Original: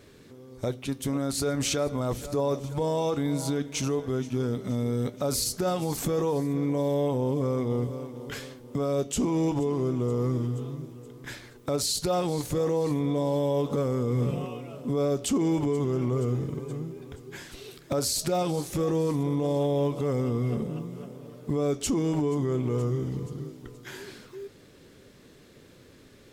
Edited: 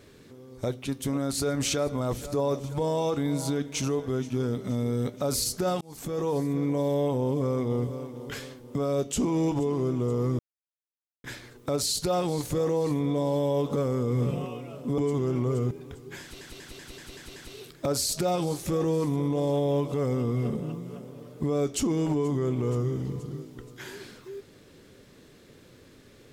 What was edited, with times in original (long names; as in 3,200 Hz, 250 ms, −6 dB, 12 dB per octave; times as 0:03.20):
0:05.81–0:06.35: fade in
0:10.39–0:11.24: silence
0:14.98–0:15.64: remove
0:16.37–0:16.92: remove
0:17.43: stutter 0.19 s, 7 plays